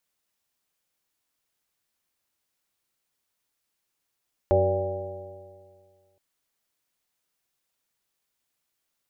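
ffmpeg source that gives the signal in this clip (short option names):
-f lavfi -i "aevalsrc='0.0708*pow(10,-3*t/1.99)*sin(2*PI*92.43*t)+0.0178*pow(10,-3*t/1.99)*sin(2*PI*185.67*t)+0.0075*pow(10,-3*t/1.99)*sin(2*PI*280.49*t)+0.0708*pow(10,-3*t/1.99)*sin(2*PI*377.67*t)+0.0355*pow(10,-3*t/1.99)*sin(2*PI*477.94*t)+0.126*pow(10,-3*t/1.99)*sin(2*PI*581.99*t)+0.0158*pow(10,-3*t/1.99)*sin(2*PI*690.48*t)+0.0398*pow(10,-3*t/1.99)*sin(2*PI*804.01*t)':d=1.67:s=44100"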